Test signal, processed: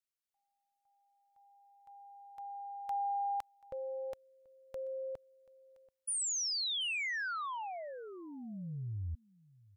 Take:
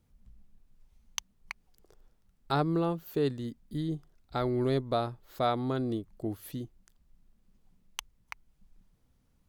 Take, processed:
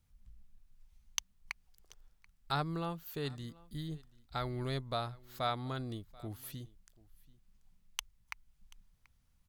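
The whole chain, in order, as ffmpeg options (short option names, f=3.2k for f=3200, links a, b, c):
-af "equalizer=f=350:w=0.58:g=-13,aecho=1:1:734:0.0668"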